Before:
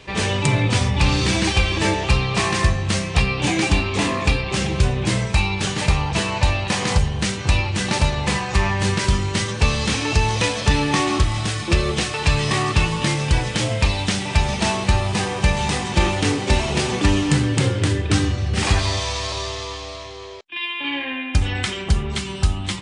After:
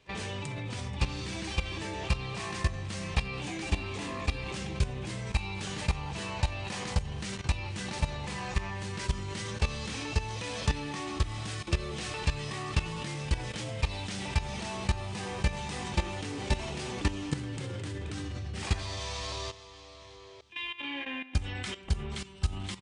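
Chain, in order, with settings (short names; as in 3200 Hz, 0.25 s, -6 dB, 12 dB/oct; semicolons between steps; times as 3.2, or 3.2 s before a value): feedback echo 0.48 s, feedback 56%, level -21 dB; level quantiser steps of 14 dB; gain -8.5 dB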